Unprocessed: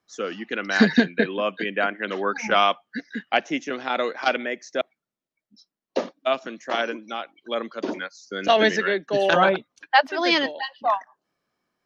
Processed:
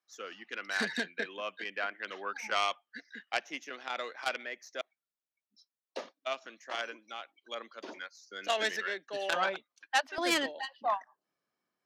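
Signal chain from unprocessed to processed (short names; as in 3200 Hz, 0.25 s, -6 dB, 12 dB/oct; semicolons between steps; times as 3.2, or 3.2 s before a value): tracing distortion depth 0.081 ms; HPF 1100 Hz 6 dB/oct, from 10.18 s 160 Hz; gain -8.5 dB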